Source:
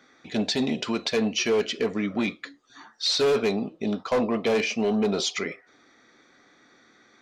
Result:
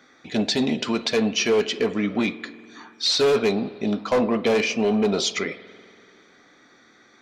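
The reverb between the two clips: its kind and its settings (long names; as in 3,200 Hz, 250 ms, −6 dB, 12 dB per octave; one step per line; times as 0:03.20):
spring reverb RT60 2.4 s, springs 48 ms, chirp 55 ms, DRR 16 dB
level +3 dB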